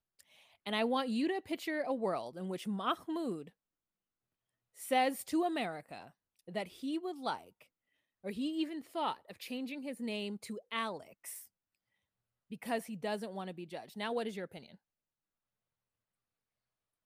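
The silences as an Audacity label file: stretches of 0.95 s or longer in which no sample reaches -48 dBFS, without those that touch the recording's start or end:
3.480000	4.780000	silence
11.450000	12.510000	silence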